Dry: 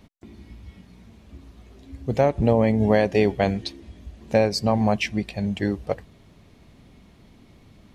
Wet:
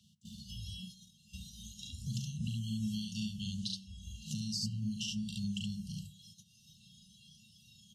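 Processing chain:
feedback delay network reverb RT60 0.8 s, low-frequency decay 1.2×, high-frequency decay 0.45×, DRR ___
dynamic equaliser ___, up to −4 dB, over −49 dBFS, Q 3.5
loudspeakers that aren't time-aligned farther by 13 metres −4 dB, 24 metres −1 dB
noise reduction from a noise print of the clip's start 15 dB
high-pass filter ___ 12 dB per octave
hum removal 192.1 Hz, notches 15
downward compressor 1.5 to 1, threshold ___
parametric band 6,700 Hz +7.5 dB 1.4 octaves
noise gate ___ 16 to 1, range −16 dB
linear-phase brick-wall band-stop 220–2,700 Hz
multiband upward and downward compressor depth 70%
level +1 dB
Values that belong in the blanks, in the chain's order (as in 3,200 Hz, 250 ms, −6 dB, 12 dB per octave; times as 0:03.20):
14 dB, 4,200 Hz, 150 Hz, −46 dBFS, −58 dBFS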